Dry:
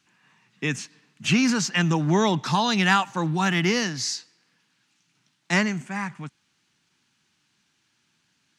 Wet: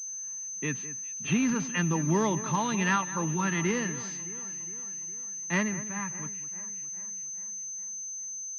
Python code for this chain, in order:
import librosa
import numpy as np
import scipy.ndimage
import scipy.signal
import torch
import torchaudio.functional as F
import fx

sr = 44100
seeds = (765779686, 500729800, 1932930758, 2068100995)

y = fx.notch_comb(x, sr, f0_hz=750.0)
y = fx.echo_alternate(y, sr, ms=205, hz=2400.0, feedback_pct=74, wet_db=-14.0)
y = fx.pwm(y, sr, carrier_hz=6200.0)
y = y * librosa.db_to_amplitude(-5.0)